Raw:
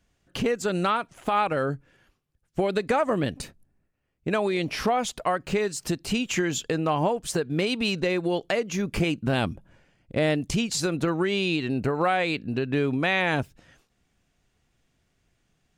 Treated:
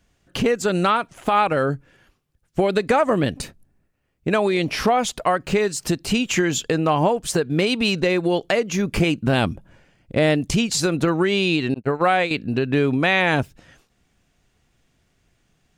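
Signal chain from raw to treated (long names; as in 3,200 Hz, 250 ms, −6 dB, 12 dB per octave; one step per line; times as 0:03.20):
0:11.74–0:12.31: noise gate −24 dBFS, range −40 dB
level +5.5 dB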